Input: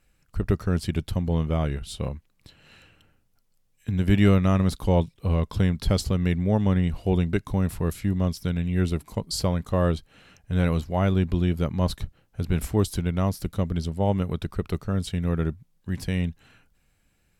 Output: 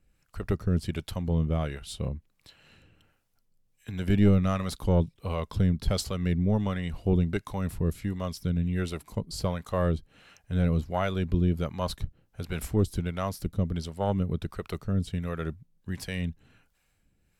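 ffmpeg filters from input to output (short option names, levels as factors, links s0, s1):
-filter_complex "[0:a]aeval=exprs='0.398*(cos(1*acos(clip(val(0)/0.398,-1,1)))-cos(1*PI/2))+0.0891*(cos(2*acos(clip(val(0)/0.398,-1,1)))-cos(2*PI/2))':c=same,acrossover=split=480[s0][s1];[s0]aeval=exprs='val(0)*(1-0.7/2+0.7/2*cos(2*PI*1.4*n/s))':c=same[s2];[s1]aeval=exprs='val(0)*(1-0.7/2-0.7/2*cos(2*PI*1.4*n/s))':c=same[s3];[s2][s3]amix=inputs=2:normalize=0"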